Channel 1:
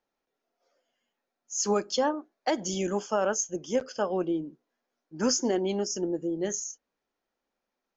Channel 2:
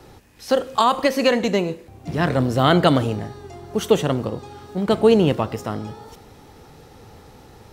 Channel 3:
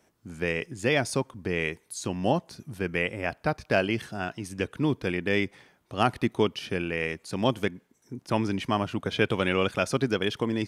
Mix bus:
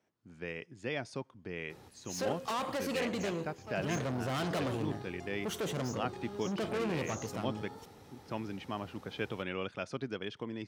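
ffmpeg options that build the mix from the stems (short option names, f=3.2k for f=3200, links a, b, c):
-filter_complex "[0:a]asoftclip=type=hard:threshold=-26.5dB,tremolo=f=1.2:d=0.56,adelay=550,volume=-2.5dB[a];[1:a]aeval=exprs='(tanh(17.8*val(0)+0.45)-tanh(0.45))/17.8':c=same,adelay=1700,volume=-7dB[b];[2:a]lowpass=5.4k,volume=-12.5dB,asplit=2[c][d];[d]apad=whole_len=375561[e];[a][e]sidechaincompress=threshold=-46dB:ratio=4:attack=22:release=1430[f];[f][b][c]amix=inputs=3:normalize=0,highpass=82"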